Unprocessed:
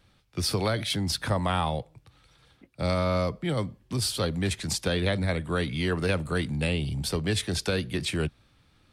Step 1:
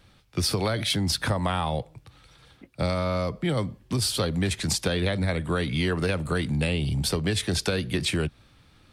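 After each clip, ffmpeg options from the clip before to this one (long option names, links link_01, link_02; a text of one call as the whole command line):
ffmpeg -i in.wav -af "acompressor=threshold=-27dB:ratio=6,volume=5.5dB" out.wav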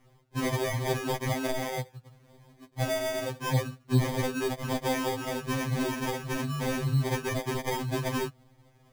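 ffmpeg -i in.wav -af "acrusher=samples=32:mix=1:aa=0.000001,afftfilt=real='re*2.45*eq(mod(b,6),0)':imag='im*2.45*eq(mod(b,6),0)':win_size=2048:overlap=0.75" out.wav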